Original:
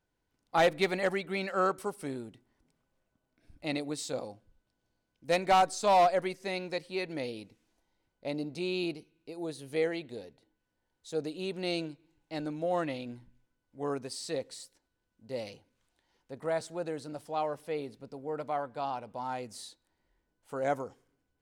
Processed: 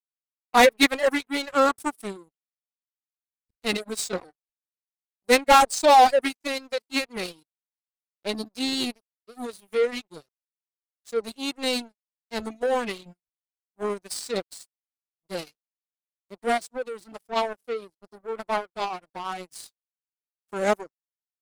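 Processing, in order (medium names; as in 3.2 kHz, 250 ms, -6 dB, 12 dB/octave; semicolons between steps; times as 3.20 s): formant-preserving pitch shift +6.5 st; treble shelf 6.8 kHz +10 dB; waveshaping leveller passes 2; reverb removal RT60 0.62 s; power-law waveshaper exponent 2; trim +8.5 dB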